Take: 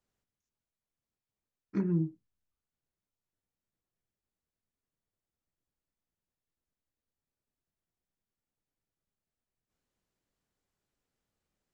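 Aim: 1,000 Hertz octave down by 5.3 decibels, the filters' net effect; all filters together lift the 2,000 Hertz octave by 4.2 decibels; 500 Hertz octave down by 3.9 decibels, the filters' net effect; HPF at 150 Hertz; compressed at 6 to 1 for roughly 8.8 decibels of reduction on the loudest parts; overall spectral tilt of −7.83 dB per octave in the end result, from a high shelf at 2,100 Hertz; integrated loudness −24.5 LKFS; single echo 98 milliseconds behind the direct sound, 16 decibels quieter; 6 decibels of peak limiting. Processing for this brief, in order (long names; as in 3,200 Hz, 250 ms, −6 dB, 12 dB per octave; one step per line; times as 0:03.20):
high-pass filter 150 Hz
parametric band 500 Hz −6 dB
parametric band 1,000 Hz −9 dB
parametric band 2,000 Hz +5.5 dB
high-shelf EQ 2,100 Hz +5.5 dB
downward compressor 6 to 1, threshold −37 dBFS
brickwall limiter −34 dBFS
single-tap delay 98 ms −16 dB
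level +20.5 dB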